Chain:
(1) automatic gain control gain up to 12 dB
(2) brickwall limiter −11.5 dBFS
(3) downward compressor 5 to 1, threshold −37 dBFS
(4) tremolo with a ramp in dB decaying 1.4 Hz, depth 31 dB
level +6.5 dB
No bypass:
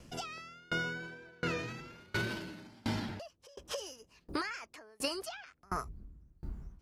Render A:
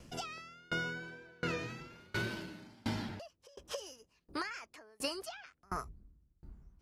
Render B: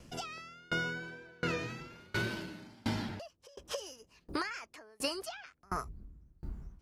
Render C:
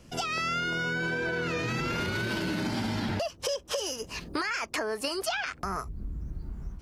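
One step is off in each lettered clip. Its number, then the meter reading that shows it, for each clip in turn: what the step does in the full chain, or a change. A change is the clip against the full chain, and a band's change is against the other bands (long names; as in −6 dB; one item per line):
1, change in crest factor +1.5 dB
2, average gain reduction 1.5 dB
4, change in momentary loudness spread −4 LU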